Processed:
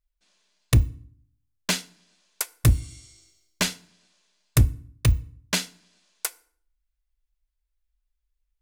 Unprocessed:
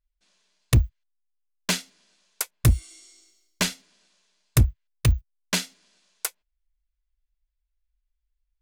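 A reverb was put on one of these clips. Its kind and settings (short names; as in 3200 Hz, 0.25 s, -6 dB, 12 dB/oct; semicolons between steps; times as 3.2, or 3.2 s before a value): FDN reverb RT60 0.53 s, low-frequency decay 1.45×, high-frequency decay 0.8×, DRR 16.5 dB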